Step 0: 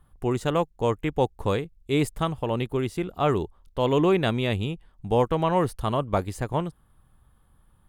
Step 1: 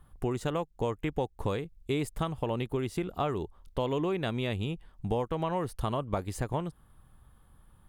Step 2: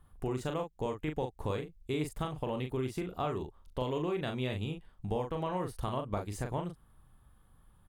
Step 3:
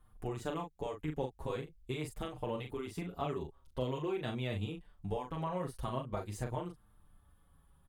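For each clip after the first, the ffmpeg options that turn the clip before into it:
ffmpeg -i in.wav -af "acompressor=threshold=-29dB:ratio=6,volume=1.5dB" out.wav
ffmpeg -i in.wav -filter_complex "[0:a]asplit=2[link_01][link_02];[link_02]adelay=39,volume=-5.5dB[link_03];[link_01][link_03]amix=inputs=2:normalize=0,volume=-4.5dB" out.wav
ffmpeg -i in.wav -filter_complex "[0:a]asplit=2[link_01][link_02];[link_02]adelay=6.1,afreqshift=-0.46[link_03];[link_01][link_03]amix=inputs=2:normalize=1" out.wav

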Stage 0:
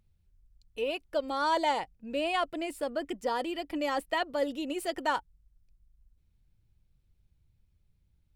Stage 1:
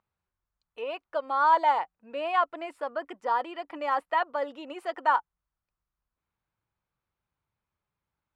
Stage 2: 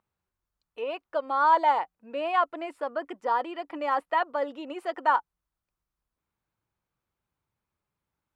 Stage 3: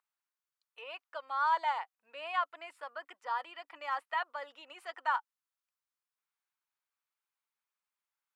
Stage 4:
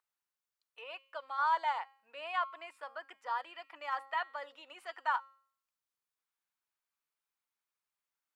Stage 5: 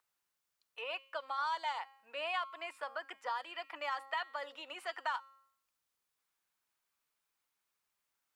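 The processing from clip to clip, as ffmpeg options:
ffmpeg -i in.wav -af "bandpass=frequency=1100:width_type=q:width=2.1:csg=0,volume=9dB" out.wav
ffmpeg -i in.wav -af "equalizer=frequency=300:width_type=o:width=1.6:gain=4" out.wav
ffmpeg -i in.wav -af "highpass=1200,volume=-3.5dB" out.wav
ffmpeg -i in.wav -af "bandreject=frequency=270.6:width_type=h:width=4,bandreject=frequency=541.2:width_type=h:width=4,bandreject=frequency=811.8:width_type=h:width=4,bandreject=frequency=1082.4:width_type=h:width=4,bandreject=frequency=1353:width_type=h:width=4,bandreject=frequency=1623.6:width_type=h:width=4,bandreject=frequency=1894.2:width_type=h:width=4,bandreject=frequency=2164.8:width_type=h:width=4,bandreject=frequency=2435.4:width_type=h:width=4,bandreject=frequency=2706:width_type=h:width=4,bandreject=frequency=2976.6:width_type=h:width=4,bandreject=frequency=3247.2:width_type=h:width=4,bandreject=frequency=3517.8:width_type=h:width=4,bandreject=frequency=3788.4:width_type=h:width=4,bandreject=frequency=4059:width_type=h:width=4,bandreject=frequency=4329.6:width_type=h:width=4,bandreject=frequency=4600.2:width_type=h:width=4,bandreject=frequency=4870.8:width_type=h:width=4,bandreject=frequency=5141.4:width_type=h:width=4,bandreject=frequency=5412:width_type=h:width=4,bandreject=frequency=5682.6:width_type=h:width=4,bandreject=frequency=5953.2:width_type=h:width=4,bandreject=frequency=6223.8:width_type=h:width=4,bandreject=frequency=6494.4:width_type=h:width=4,bandreject=frequency=6765:width_type=h:width=4,bandreject=frequency=7035.6:width_type=h:width=4,bandreject=frequency=7306.2:width_type=h:width=4,bandreject=frequency=7576.8:width_type=h:width=4,bandreject=frequency=7847.4:width_type=h:width=4,bandreject=frequency=8118:width_type=h:width=4,bandreject=frequency=8388.6:width_type=h:width=4,bandreject=frequency=8659.2:width_type=h:width=4,bandreject=frequency=8929.8:width_type=h:width=4,volume=-1dB" out.wav
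ffmpeg -i in.wav -filter_complex "[0:a]acrossover=split=250|3000[link_01][link_02][link_03];[link_02]acompressor=threshold=-43dB:ratio=4[link_04];[link_01][link_04][link_03]amix=inputs=3:normalize=0,volume=6dB" out.wav

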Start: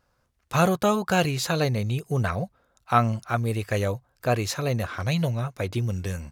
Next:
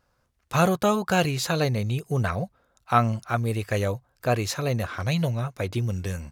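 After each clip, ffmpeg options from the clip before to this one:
ffmpeg -i in.wav -af anull out.wav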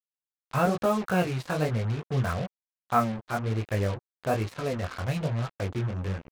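ffmpeg -i in.wav -af "lowpass=2100,flanger=delay=17.5:depth=6.1:speed=1.1,acrusher=bits=5:mix=0:aa=0.5" out.wav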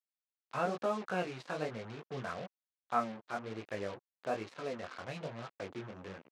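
ffmpeg -i in.wav -af "highpass=250,lowpass=6500,volume=-8dB" out.wav

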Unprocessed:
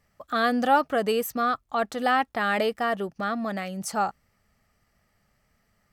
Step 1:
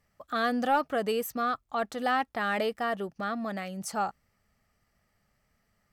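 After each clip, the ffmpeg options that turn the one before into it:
ffmpeg -i in.wav -af "asoftclip=type=tanh:threshold=-10.5dB,volume=-4dB" out.wav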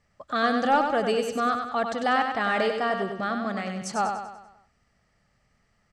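ffmpeg -i in.wav -filter_complex "[0:a]lowpass=frequency=8000:width=0.5412,lowpass=frequency=8000:width=1.3066,asplit=2[link_01][link_02];[link_02]aecho=0:1:97|194|291|388|485|582:0.501|0.246|0.12|0.059|0.0289|0.0142[link_03];[link_01][link_03]amix=inputs=2:normalize=0,volume=3.5dB" out.wav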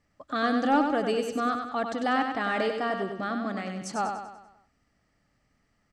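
ffmpeg -i in.wav -af "equalizer=frequency=290:width=4.3:gain=12,volume=-3.5dB" out.wav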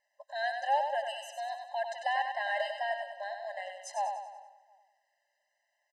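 ffmpeg -i in.wav -filter_complex "[0:a]asplit=2[link_01][link_02];[link_02]adelay=358,lowpass=frequency=3000:poles=1,volume=-21.5dB,asplit=2[link_03][link_04];[link_04]adelay=358,lowpass=frequency=3000:poles=1,volume=0.32[link_05];[link_01][link_03][link_05]amix=inputs=3:normalize=0,afftfilt=real='re*eq(mod(floor(b*sr/1024/530),2),1)':imag='im*eq(mod(floor(b*sr/1024/530),2),1)':win_size=1024:overlap=0.75,volume=-2dB" out.wav

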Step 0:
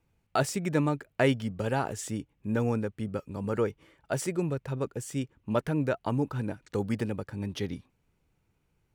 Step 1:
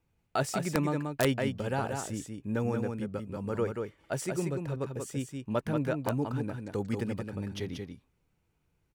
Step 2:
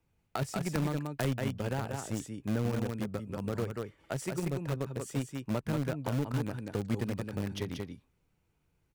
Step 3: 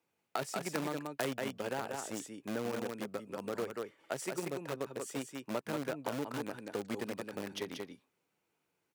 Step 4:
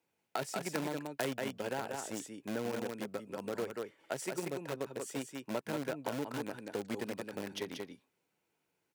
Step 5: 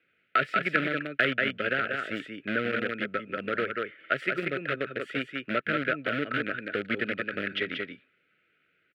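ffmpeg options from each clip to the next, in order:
ffmpeg -i in.wav -af "aecho=1:1:184:0.562,aeval=exprs='(mod(4.73*val(0)+1,2)-1)/4.73':channel_layout=same,volume=-3dB" out.wav
ffmpeg -i in.wav -filter_complex "[0:a]acrossover=split=190[link_01][link_02];[link_02]acompressor=threshold=-36dB:ratio=5[link_03];[link_01][link_03]amix=inputs=2:normalize=0,asplit=2[link_04][link_05];[link_05]acrusher=bits=4:mix=0:aa=0.000001,volume=-9dB[link_06];[link_04][link_06]amix=inputs=2:normalize=0" out.wav
ffmpeg -i in.wav -af "highpass=320" out.wav
ffmpeg -i in.wav -af "bandreject=frequency=1200:width=11" out.wav
ffmpeg -i in.wav -af "firequalizer=gain_entry='entry(630,0);entry(920,-29);entry(1300,12);entry(2000,12);entry(3200,6);entry(6000,-25)':delay=0.05:min_phase=1,volume=6dB" out.wav

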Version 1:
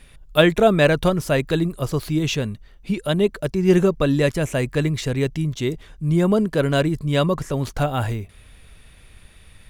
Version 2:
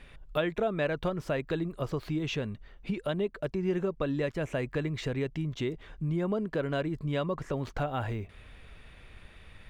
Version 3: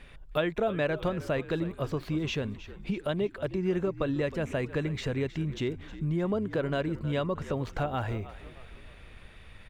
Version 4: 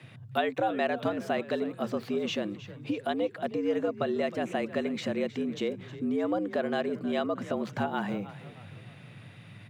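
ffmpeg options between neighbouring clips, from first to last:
ffmpeg -i in.wav -af "bass=frequency=250:gain=-4,treble=frequency=4000:gain=-12,acompressor=threshold=-31dB:ratio=3,equalizer=frequency=11000:width_type=o:width=0.37:gain=-9.5" out.wav
ffmpeg -i in.wav -filter_complex "[0:a]asplit=5[link_01][link_02][link_03][link_04][link_05];[link_02]adelay=314,afreqshift=-59,volume=-15dB[link_06];[link_03]adelay=628,afreqshift=-118,volume=-21.7dB[link_07];[link_04]adelay=942,afreqshift=-177,volume=-28.5dB[link_08];[link_05]adelay=1256,afreqshift=-236,volume=-35.2dB[link_09];[link_01][link_06][link_07][link_08][link_09]amix=inputs=5:normalize=0,volume=1dB" out.wav
ffmpeg -i in.wav -af "afreqshift=97" out.wav

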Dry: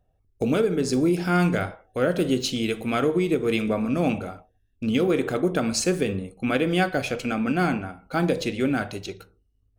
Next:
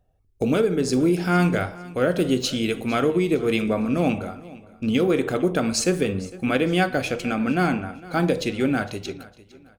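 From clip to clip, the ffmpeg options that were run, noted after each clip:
ffmpeg -i in.wav -af "aecho=1:1:457|914|1371:0.1|0.033|0.0109,volume=1.5dB" out.wav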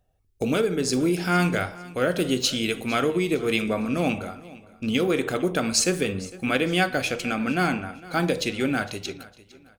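ffmpeg -i in.wav -af "tiltshelf=frequency=1300:gain=-3.5" out.wav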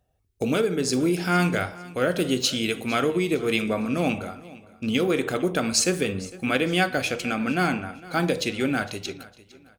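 ffmpeg -i in.wav -af "highpass=42" out.wav

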